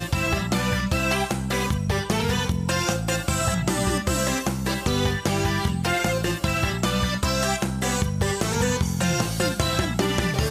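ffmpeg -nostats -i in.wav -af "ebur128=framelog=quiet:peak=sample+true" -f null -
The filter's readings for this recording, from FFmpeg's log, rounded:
Integrated loudness:
  I:         -23.7 LUFS
  Threshold: -33.7 LUFS
Loudness range:
  LRA:         0.3 LU
  Threshold: -43.7 LUFS
  LRA low:   -23.9 LUFS
  LRA high:  -23.5 LUFS
Sample peak:
  Peak:       -8.1 dBFS
True peak:
  Peak:       -7.9 dBFS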